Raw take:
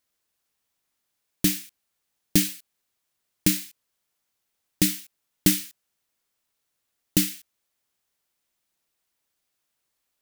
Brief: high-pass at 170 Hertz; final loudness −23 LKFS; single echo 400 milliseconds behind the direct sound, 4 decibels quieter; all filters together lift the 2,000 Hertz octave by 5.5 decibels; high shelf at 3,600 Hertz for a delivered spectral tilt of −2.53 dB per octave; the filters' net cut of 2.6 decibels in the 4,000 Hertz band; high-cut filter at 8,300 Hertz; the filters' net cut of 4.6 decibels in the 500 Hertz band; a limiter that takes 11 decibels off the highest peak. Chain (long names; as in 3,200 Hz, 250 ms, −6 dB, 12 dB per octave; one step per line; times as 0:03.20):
high-pass filter 170 Hz
low-pass filter 8,300 Hz
parametric band 500 Hz −8.5 dB
parametric band 2,000 Hz +8.5 dB
high-shelf EQ 3,600 Hz +3 dB
parametric band 4,000 Hz −8 dB
brickwall limiter −18.5 dBFS
single-tap delay 400 ms −4 dB
level +12 dB